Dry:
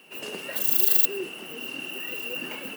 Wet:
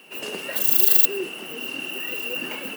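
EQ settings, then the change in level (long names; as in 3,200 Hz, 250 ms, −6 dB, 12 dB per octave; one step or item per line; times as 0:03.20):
parametric band 88 Hz −6 dB 1.2 octaves
+4.0 dB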